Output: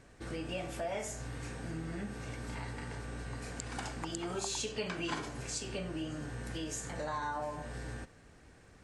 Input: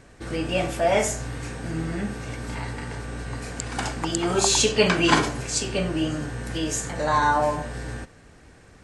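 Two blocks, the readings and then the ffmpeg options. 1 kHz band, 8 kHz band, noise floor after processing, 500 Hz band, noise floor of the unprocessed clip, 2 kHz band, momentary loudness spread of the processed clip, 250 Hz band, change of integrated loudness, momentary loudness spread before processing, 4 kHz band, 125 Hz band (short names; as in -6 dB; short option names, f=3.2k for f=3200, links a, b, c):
-16.0 dB, -15.0 dB, -59 dBFS, -15.5 dB, -51 dBFS, -15.0 dB, 7 LU, -14.0 dB, -15.0 dB, 14 LU, -15.5 dB, -12.0 dB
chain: -af "acompressor=threshold=-29dB:ratio=3,volume=-8dB"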